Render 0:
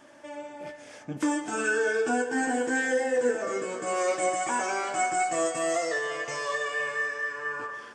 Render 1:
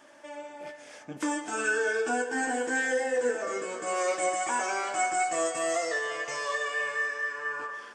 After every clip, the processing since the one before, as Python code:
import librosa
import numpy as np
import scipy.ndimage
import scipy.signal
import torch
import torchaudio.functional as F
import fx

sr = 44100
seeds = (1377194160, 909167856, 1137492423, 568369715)

y = fx.low_shelf(x, sr, hz=240.0, db=-11.5)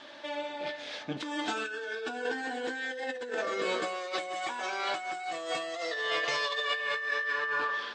y = fx.over_compress(x, sr, threshold_db=-35.0, ratio=-1.0)
y = fx.lowpass_res(y, sr, hz=3900.0, q=6.0)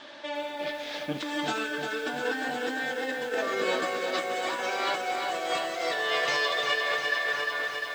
y = fx.fade_out_tail(x, sr, length_s=0.88)
y = fx.echo_crushed(y, sr, ms=350, feedback_pct=80, bits=9, wet_db=-6.0)
y = y * librosa.db_to_amplitude(2.5)